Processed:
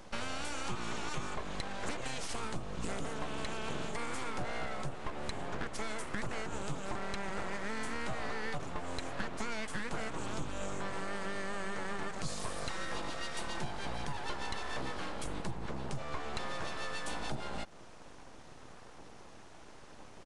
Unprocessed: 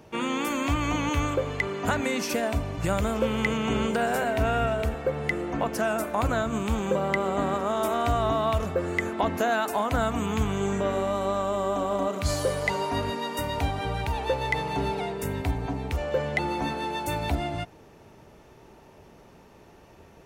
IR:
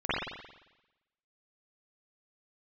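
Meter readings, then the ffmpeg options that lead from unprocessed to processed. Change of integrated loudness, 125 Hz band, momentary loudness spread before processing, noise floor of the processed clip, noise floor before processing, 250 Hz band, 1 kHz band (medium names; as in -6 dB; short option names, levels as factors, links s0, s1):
-12.5 dB, -14.0 dB, 4 LU, -51 dBFS, -52 dBFS, -14.0 dB, -12.5 dB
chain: -af "equalizer=f=125:t=o:w=1:g=-3,equalizer=f=250:t=o:w=1:g=-4,equalizer=f=500:t=o:w=1:g=-5,equalizer=f=2000:t=o:w=1:g=-7,acompressor=threshold=0.0112:ratio=4,aeval=exprs='abs(val(0))':c=same,aresample=22050,aresample=44100,volume=1.78"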